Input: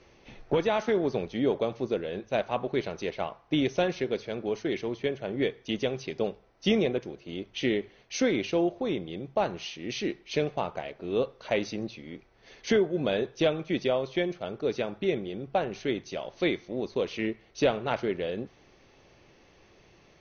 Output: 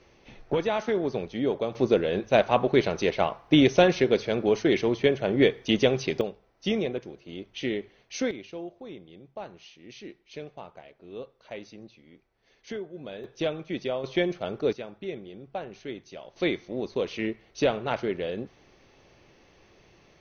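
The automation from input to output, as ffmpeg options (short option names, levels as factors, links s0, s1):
-af "asetnsamples=n=441:p=0,asendcmd='1.75 volume volume 7.5dB;6.21 volume volume -2.5dB;8.31 volume volume -12dB;13.24 volume volume -3.5dB;14.04 volume volume 3dB;14.73 volume volume -7.5dB;16.36 volume volume 0.5dB',volume=0.944"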